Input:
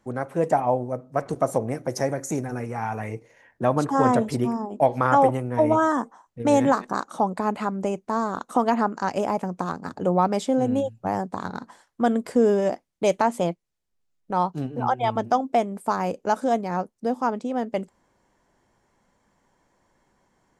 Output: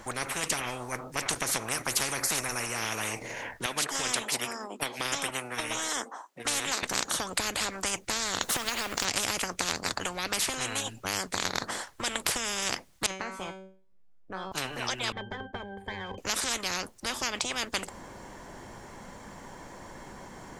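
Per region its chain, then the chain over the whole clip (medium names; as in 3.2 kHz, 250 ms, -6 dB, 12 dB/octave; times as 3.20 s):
3.66–6.83 s: high-pass 280 Hz 24 dB/octave + upward expansion, over -35 dBFS
8.42–9.05 s: companding laws mixed up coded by mu + compression, threshold -24 dBFS
13.06–14.52 s: low-pass 1 kHz 6 dB/octave + feedback comb 190 Hz, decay 0.4 s, mix 90%
15.12–16.18 s: comb filter that takes the minimum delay 0.42 ms + compression, threshold -23 dBFS + pitch-class resonator G, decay 0.17 s
whole clip: dynamic bell 3 kHz, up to +5 dB, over -39 dBFS, Q 0.8; compression, threshold -19 dBFS; spectrum-flattening compressor 10:1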